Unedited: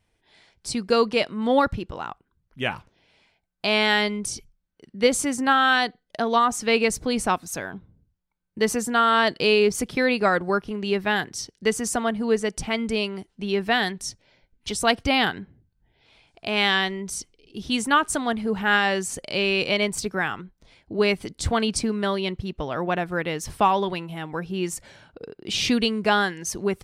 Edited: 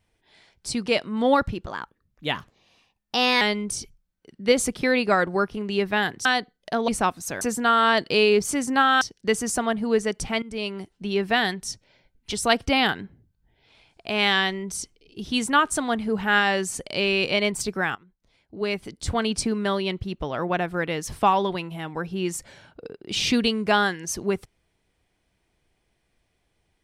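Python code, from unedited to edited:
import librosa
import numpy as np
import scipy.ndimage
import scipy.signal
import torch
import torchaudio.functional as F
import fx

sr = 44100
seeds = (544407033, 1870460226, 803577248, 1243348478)

y = fx.edit(x, sr, fx.cut(start_s=0.86, length_s=0.25),
    fx.speed_span(start_s=1.91, length_s=2.05, speed=1.17),
    fx.swap(start_s=5.2, length_s=0.52, other_s=9.79, other_length_s=1.6),
    fx.cut(start_s=6.35, length_s=0.79),
    fx.cut(start_s=7.67, length_s=1.04),
    fx.fade_in_from(start_s=12.8, length_s=0.52, curve='qsin', floor_db=-18.5),
    fx.fade_in_from(start_s=20.33, length_s=1.57, floor_db=-20.0), tone=tone)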